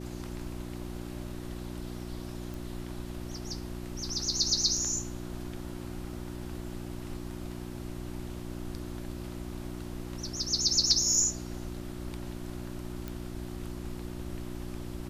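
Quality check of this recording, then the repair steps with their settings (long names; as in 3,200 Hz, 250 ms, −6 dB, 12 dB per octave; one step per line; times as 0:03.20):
mains hum 60 Hz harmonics 6 −40 dBFS
0:02.54: click
0:13.08: click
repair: click removal
hum removal 60 Hz, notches 6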